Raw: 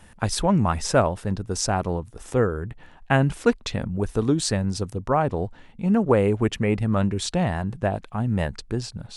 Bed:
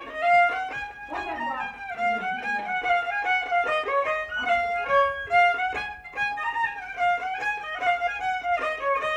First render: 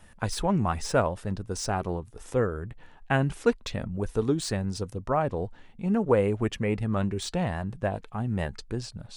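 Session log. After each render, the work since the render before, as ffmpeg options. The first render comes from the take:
ffmpeg -i in.wav -filter_complex "[0:a]flanger=delay=1.5:depth=1.3:regen=79:speed=0.78:shape=triangular,acrossover=split=3500[link_01][link_02];[link_02]asoftclip=type=tanh:threshold=-30dB[link_03];[link_01][link_03]amix=inputs=2:normalize=0" out.wav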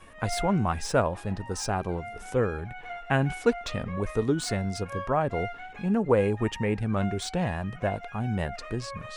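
ffmpeg -i in.wav -i bed.wav -filter_complex "[1:a]volume=-16dB[link_01];[0:a][link_01]amix=inputs=2:normalize=0" out.wav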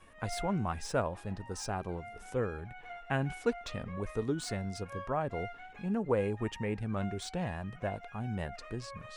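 ffmpeg -i in.wav -af "volume=-7.5dB" out.wav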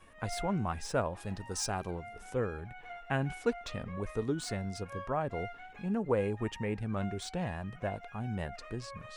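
ffmpeg -i in.wav -filter_complex "[0:a]asettb=1/sr,asplit=3[link_01][link_02][link_03];[link_01]atrim=end=1.204[link_04];[link_02]atrim=start=1.2:end=1.91,asetpts=PTS-STARTPTS,afade=type=in:duration=0.004:curve=qsin,afade=type=out:start_time=0.706:duration=0.004:curve=qsin,highshelf=frequency=2700:gain=8[link_05];[link_03]atrim=start=1.906[link_06];[link_04][link_05]acrossfade=duration=0.004:curve1=hsin:curve2=qsin[link_07];[link_07][link_06]acrossfade=duration=0.004:curve1=qsin:curve2=hsin" out.wav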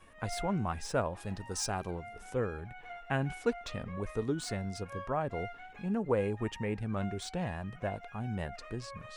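ffmpeg -i in.wav -af anull out.wav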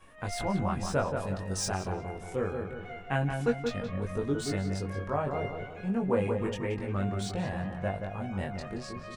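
ffmpeg -i in.wav -filter_complex "[0:a]asplit=2[link_01][link_02];[link_02]adelay=21,volume=-2.5dB[link_03];[link_01][link_03]amix=inputs=2:normalize=0,asplit=2[link_04][link_05];[link_05]adelay=177,lowpass=frequency=1900:poles=1,volume=-5dB,asplit=2[link_06][link_07];[link_07]adelay=177,lowpass=frequency=1900:poles=1,volume=0.47,asplit=2[link_08][link_09];[link_09]adelay=177,lowpass=frequency=1900:poles=1,volume=0.47,asplit=2[link_10][link_11];[link_11]adelay=177,lowpass=frequency=1900:poles=1,volume=0.47,asplit=2[link_12][link_13];[link_13]adelay=177,lowpass=frequency=1900:poles=1,volume=0.47,asplit=2[link_14][link_15];[link_15]adelay=177,lowpass=frequency=1900:poles=1,volume=0.47[link_16];[link_04][link_06][link_08][link_10][link_12][link_14][link_16]amix=inputs=7:normalize=0" out.wav

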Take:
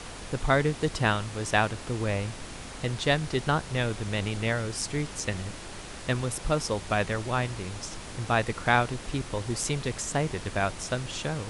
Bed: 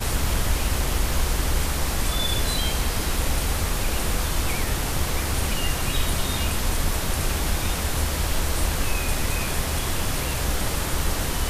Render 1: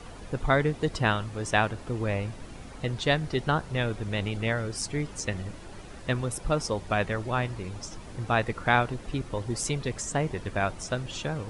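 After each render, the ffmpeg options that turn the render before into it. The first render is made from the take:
ffmpeg -i in.wav -af "afftdn=noise_reduction=10:noise_floor=-41" out.wav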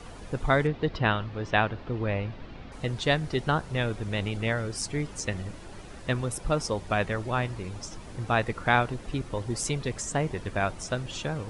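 ffmpeg -i in.wav -filter_complex "[0:a]asettb=1/sr,asplit=3[link_01][link_02][link_03];[link_01]atrim=end=0.674[link_04];[link_02]atrim=start=0.67:end=2.72,asetpts=PTS-STARTPTS,afade=type=in:duration=0.004:curve=qsin,afade=type=out:start_time=2.046:duration=0.004:curve=qsin,lowpass=frequency=4300:width=0.5412,lowpass=frequency=4300:width=1.3066[link_05];[link_03]atrim=start=2.716[link_06];[link_04][link_05]acrossfade=duration=0.004:curve1=hsin:curve2=qsin[link_07];[link_07][link_06]acrossfade=duration=0.004:curve1=qsin:curve2=hsin" out.wav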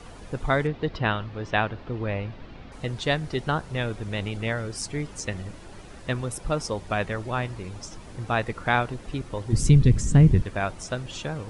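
ffmpeg -i in.wav -filter_complex "[0:a]asplit=3[link_01][link_02][link_03];[link_01]afade=type=out:start_time=9.52:duration=0.02[link_04];[link_02]asubboost=boost=10.5:cutoff=210,afade=type=in:start_time=9.52:duration=0.02,afade=type=out:start_time=10.41:duration=0.02[link_05];[link_03]afade=type=in:start_time=10.41:duration=0.02[link_06];[link_04][link_05][link_06]amix=inputs=3:normalize=0" out.wav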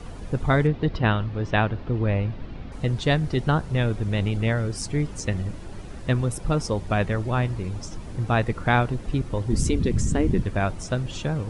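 ffmpeg -i in.wav -af "afftfilt=real='re*lt(hypot(re,im),0.708)':imag='im*lt(hypot(re,im),0.708)':win_size=1024:overlap=0.75,lowshelf=frequency=350:gain=8.5" out.wav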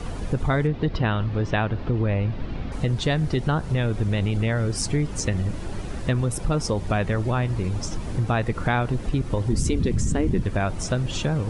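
ffmpeg -i in.wav -filter_complex "[0:a]asplit=2[link_01][link_02];[link_02]alimiter=limit=-17dB:level=0:latency=1,volume=1dB[link_03];[link_01][link_03]amix=inputs=2:normalize=0,acompressor=threshold=-22dB:ratio=2" out.wav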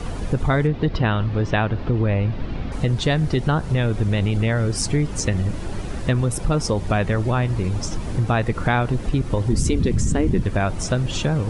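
ffmpeg -i in.wav -af "volume=3dB" out.wav

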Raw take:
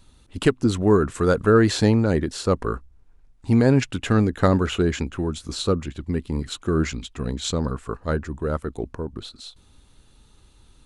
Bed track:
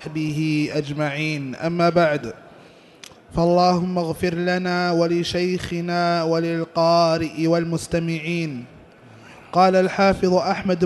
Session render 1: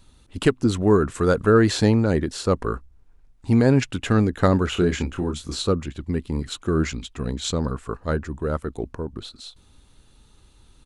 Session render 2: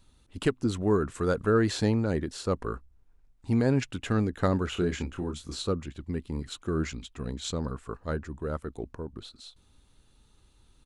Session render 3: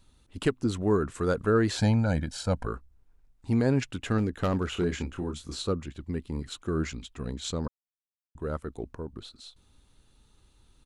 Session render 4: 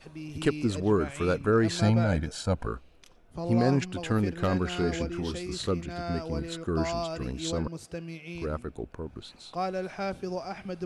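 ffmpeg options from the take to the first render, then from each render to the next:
ffmpeg -i in.wav -filter_complex "[0:a]asplit=3[link_01][link_02][link_03];[link_01]afade=type=out:start_time=4.75:duration=0.02[link_04];[link_02]asplit=2[link_05][link_06];[link_06]adelay=28,volume=-6dB[link_07];[link_05][link_07]amix=inputs=2:normalize=0,afade=type=in:start_time=4.75:duration=0.02,afade=type=out:start_time=5.61:duration=0.02[link_08];[link_03]afade=type=in:start_time=5.61:duration=0.02[link_09];[link_04][link_08][link_09]amix=inputs=3:normalize=0" out.wav
ffmpeg -i in.wav -af "volume=-7.5dB" out.wav
ffmpeg -i in.wav -filter_complex "[0:a]asettb=1/sr,asplit=3[link_01][link_02][link_03];[link_01]atrim=end=1.774[link_04];[link_02]atrim=start=1.77:end=2.67,asetpts=PTS-STARTPTS,afade=type=in:duration=0.004:curve=qsin,afade=type=out:start_time=0.896:duration=0.004:curve=qsin,aecho=1:1:1.3:0.86,atrim=end_sample=39690[link_05];[link_03]atrim=start=2.666[link_06];[link_04][link_05]acrossfade=duration=0.004:curve1=hsin:curve2=qsin[link_07];[link_07][link_06]acrossfade=duration=0.004:curve1=qsin:curve2=hsin,asettb=1/sr,asplit=3[link_08][link_09][link_10];[link_08]atrim=end=4.184[link_11];[link_09]atrim=start=4.18:end=4.85,asetpts=PTS-STARTPTS,afade=type=in:duration=0.004:curve=qsin,afade=type=out:start_time=0.666:duration=0.004:curve=qsin,asoftclip=type=hard:threshold=-20.5dB[link_12];[link_10]atrim=start=4.846[link_13];[link_11][link_12]acrossfade=duration=0.004:curve1=hsin:curve2=qsin[link_14];[link_14][link_13]acrossfade=duration=0.004:curve1=qsin:curve2=hsin,asplit=3[link_15][link_16][link_17];[link_15]atrim=end=7.68,asetpts=PTS-STARTPTS,afade=type=out:start_time=7.676:duration=0.004:curve=hsin[link_18];[link_16]atrim=start=7.68:end=8.35,asetpts=PTS-STARTPTS,volume=0[link_19];[link_17]atrim=start=8.35,asetpts=PTS-STARTPTS,afade=type=in:duration=0.004:curve=hsin[link_20];[link_18][link_19][link_20]concat=n=3:v=0:a=1" out.wav
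ffmpeg -i in.wav -i bed.wav -filter_complex "[1:a]volume=-16dB[link_01];[0:a][link_01]amix=inputs=2:normalize=0" out.wav

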